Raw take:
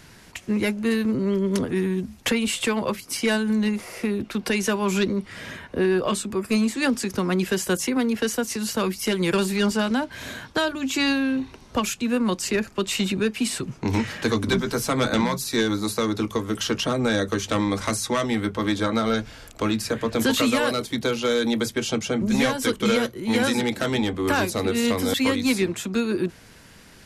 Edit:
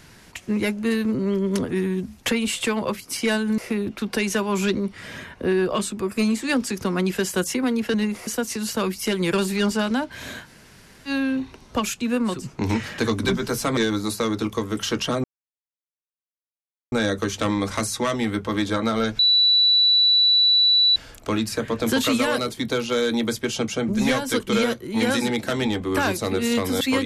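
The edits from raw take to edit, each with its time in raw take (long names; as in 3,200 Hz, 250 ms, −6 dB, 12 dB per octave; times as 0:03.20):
0:03.58–0:03.91: move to 0:08.27
0:10.44–0:11.10: fill with room tone, crossfade 0.10 s
0:12.36–0:13.60: remove, crossfade 0.24 s
0:15.01–0:15.55: remove
0:17.02: splice in silence 1.68 s
0:19.29: insert tone 3,950 Hz −13.5 dBFS 1.77 s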